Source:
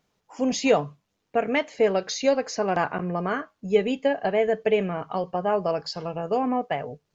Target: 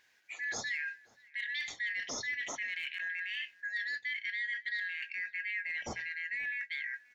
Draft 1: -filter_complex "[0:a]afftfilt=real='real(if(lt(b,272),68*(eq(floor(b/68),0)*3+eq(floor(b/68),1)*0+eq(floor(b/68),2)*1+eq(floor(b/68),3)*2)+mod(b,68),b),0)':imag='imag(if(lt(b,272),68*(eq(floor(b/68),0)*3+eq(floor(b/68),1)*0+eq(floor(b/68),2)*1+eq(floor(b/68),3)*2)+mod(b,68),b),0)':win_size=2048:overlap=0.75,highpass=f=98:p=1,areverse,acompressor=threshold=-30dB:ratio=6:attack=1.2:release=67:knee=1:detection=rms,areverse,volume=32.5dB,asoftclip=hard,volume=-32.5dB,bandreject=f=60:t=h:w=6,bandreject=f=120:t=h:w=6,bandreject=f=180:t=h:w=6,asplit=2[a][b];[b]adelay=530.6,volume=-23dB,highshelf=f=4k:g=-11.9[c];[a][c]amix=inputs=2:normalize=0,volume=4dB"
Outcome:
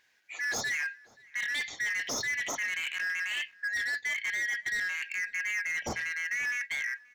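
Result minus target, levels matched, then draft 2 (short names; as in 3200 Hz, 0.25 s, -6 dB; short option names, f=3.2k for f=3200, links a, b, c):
compressor: peak gain reduction -7 dB
-filter_complex "[0:a]afftfilt=real='real(if(lt(b,272),68*(eq(floor(b/68),0)*3+eq(floor(b/68),1)*0+eq(floor(b/68),2)*1+eq(floor(b/68),3)*2)+mod(b,68),b),0)':imag='imag(if(lt(b,272),68*(eq(floor(b/68),0)*3+eq(floor(b/68),1)*0+eq(floor(b/68),2)*1+eq(floor(b/68),3)*2)+mod(b,68),b),0)':win_size=2048:overlap=0.75,highpass=f=98:p=1,areverse,acompressor=threshold=-38.5dB:ratio=6:attack=1.2:release=67:knee=1:detection=rms,areverse,volume=32.5dB,asoftclip=hard,volume=-32.5dB,bandreject=f=60:t=h:w=6,bandreject=f=120:t=h:w=6,bandreject=f=180:t=h:w=6,asplit=2[a][b];[b]adelay=530.6,volume=-23dB,highshelf=f=4k:g=-11.9[c];[a][c]amix=inputs=2:normalize=0,volume=4dB"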